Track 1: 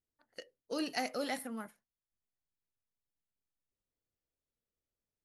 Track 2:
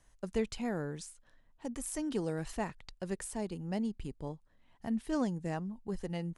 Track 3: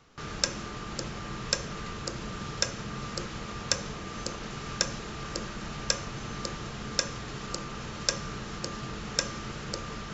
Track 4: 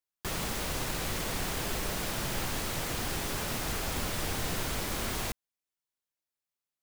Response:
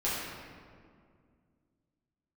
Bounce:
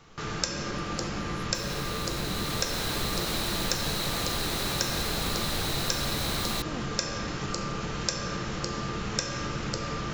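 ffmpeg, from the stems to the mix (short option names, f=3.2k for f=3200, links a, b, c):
-filter_complex "[0:a]volume=-10dB[a];[1:a]adelay=1550,volume=-5.5dB[b];[2:a]volume=1.5dB,asplit=2[c][d];[d]volume=-7dB[e];[3:a]equalizer=f=4k:t=o:w=0.24:g=13.5,dynaudnorm=f=190:g=13:m=10dB,adelay=1300,volume=-3.5dB[f];[4:a]atrim=start_sample=2205[g];[e][g]afir=irnorm=-1:irlink=0[h];[a][b][c][f][h]amix=inputs=5:normalize=0,acompressor=threshold=-30dB:ratio=2"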